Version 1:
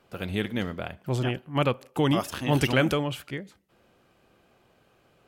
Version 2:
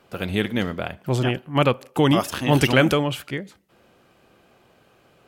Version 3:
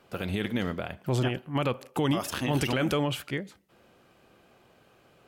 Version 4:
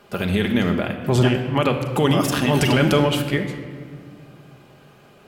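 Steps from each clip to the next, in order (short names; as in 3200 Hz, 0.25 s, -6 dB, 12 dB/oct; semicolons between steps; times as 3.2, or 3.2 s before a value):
low shelf 66 Hz -6 dB; gain +6 dB
limiter -15 dBFS, peak gain reduction 11 dB; gain -3 dB
reverb RT60 1.9 s, pre-delay 5 ms, DRR 4 dB; gain +8 dB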